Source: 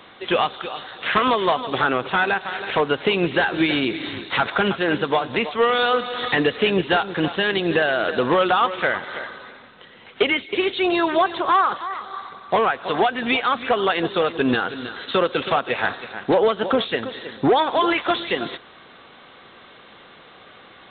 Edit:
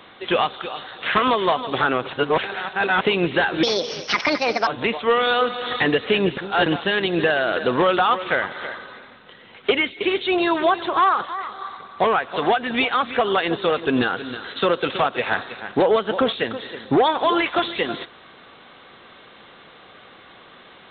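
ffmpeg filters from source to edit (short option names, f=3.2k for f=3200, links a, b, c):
-filter_complex "[0:a]asplit=7[a][b][c][d][e][f][g];[a]atrim=end=2.132[h];[b]atrim=start=2.128:end=3.012,asetpts=PTS-STARTPTS,areverse[i];[c]atrim=start=3.008:end=3.634[j];[d]atrim=start=3.63:end=5.19,asetpts=PTS-STARTPTS,asetrate=66150,aresample=44100[k];[e]atrim=start=5.186:end=6.892[l];[f]atrim=start=6.888:end=7.182,asetpts=PTS-STARTPTS,areverse[m];[g]atrim=start=7.178[n];[h][i]acrossfade=d=0.004:c1=hsin:c2=hsin[o];[o][j]acrossfade=d=0.004:c1=hsin:c2=hsin[p];[p][k]acrossfade=d=0.004:c1=hsin:c2=hsin[q];[q][l]acrossfade=d=0.004:c1=hsin:c2=hsin[r];[r][m]acrossfade=d=0.004:c1=hsin:c2=hsin[s];[s][n]acrossfade=d=0.004:c1=hsin:c2=hsin"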